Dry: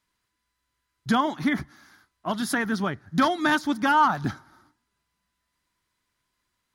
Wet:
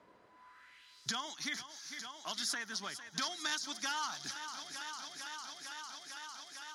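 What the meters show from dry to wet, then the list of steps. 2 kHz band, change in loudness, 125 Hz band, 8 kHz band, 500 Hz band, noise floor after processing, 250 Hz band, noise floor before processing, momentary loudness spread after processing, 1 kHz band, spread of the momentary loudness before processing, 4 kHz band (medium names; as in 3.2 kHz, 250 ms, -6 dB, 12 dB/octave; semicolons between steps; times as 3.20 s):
-12.5 dB, -15.0 dB, -25.0 dB, +1.5 dB, -21.0 dB, -62 dBFS, -24.5 dB, -79 dBFS, 10 LU, -18.0 dB, 13 LU, -2.0 dB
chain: bass shelf 240 Hz +8 dB; band-pass sweep 550 Hz -> 5.9 kHz, 0.25–1.08 s; on a send: thinning echo 452 ms, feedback 75%, high-pass 150 Hz, level -16 dB; on the sum: three bands compressed up and down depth 70%; trim +6 dB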